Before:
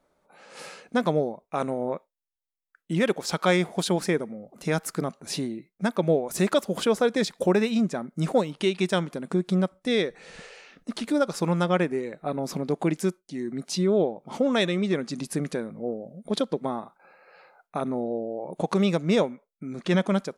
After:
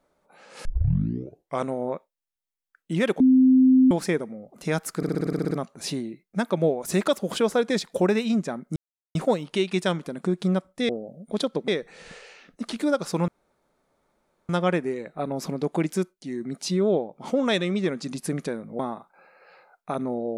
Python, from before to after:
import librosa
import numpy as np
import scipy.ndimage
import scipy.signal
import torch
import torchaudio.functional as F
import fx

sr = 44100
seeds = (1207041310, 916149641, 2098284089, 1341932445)

y = fx.edit(x, sr, fx.tape_start(start_s=0.65, length_s=1.0),
    fx.bleep(start_s=3.2, length_s=0.71, hz=259.0, db=-12.5),
    fx.stutter(start_s=4.97, slice_s=0.06, count=10),
    fx.insert_silence(at_s=8.22, length_s=0.39),
    fx.insert_room_tone(at_s=11.56, length_s=1.21),
    fx.move(start_s=15.86, length_s=0.79, to_s=9.96), tone=tone)